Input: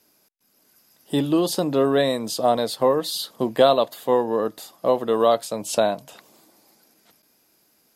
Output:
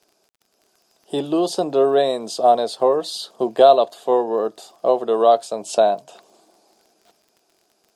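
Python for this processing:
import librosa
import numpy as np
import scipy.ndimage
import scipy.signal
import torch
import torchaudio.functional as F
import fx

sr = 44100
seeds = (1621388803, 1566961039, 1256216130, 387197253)

y = fx.cabinet(x, sr, low_hz=200.0, low_slope=12, high_hz=9400.0, hz=(270.0, 390.0, 700.0, 2000.0), db=(-5, 7, 9, -8))
y = fx.dmg_crackle(y, sr, seeds[0], per_s=30.0, level_db=-41.0)
y = F.gain(torch.from_numpy(y), -1.0).numpy()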